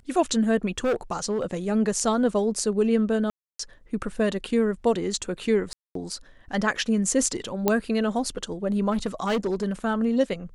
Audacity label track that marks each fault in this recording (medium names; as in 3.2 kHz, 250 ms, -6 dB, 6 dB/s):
0.780000	1.540000	clipped -20 dBFS
3.300000	3.590000	dropout 294 ms
5.730000	5.950000	dropout 223 ms
7.680000	7.680000	pop -7 dBFS
8.910000	9.720000	clipped -20.5 dBFS